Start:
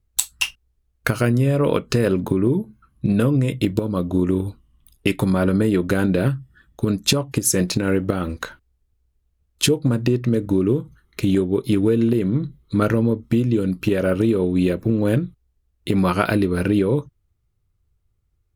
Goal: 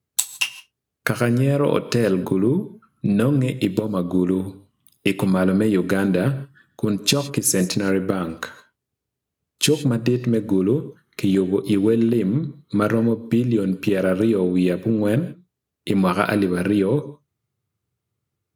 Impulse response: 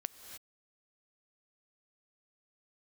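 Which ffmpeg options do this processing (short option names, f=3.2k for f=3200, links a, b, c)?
-filter_complex "[0:a]highpass=f=120:w=0.5412,highpass=f=120:w=1.3066[a];[1:a]atrim=start_sample=2205,afade=t=out:st=0.22:d=0.01,atrim=end_sample=10143[b];[a][b]afir=irnorm=-1:irlink=0,volume=2.5dB"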